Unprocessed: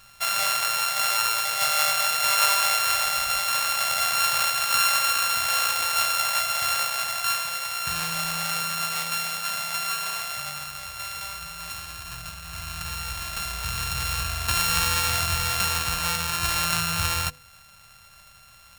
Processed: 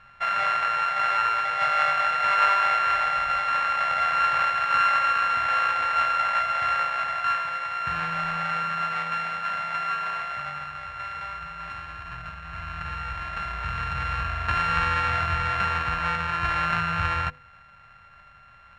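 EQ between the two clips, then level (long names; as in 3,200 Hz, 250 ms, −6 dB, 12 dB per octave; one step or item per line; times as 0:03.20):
low-pass with resonance 1,800 Hz, resonance Q 1.8
0.0 dB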